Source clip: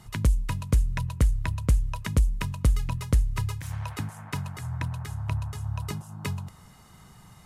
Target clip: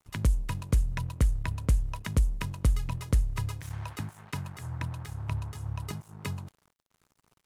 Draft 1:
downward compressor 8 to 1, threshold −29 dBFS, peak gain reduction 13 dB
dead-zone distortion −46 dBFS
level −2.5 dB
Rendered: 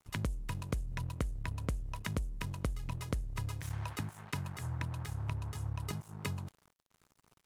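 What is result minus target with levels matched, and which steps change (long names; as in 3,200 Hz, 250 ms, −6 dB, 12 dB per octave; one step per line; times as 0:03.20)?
downward compressor: peak gain reduction +13 dB
remove: downward compressor 8 to 1, threshold −29 dBFS, peak gain reduction 13 dB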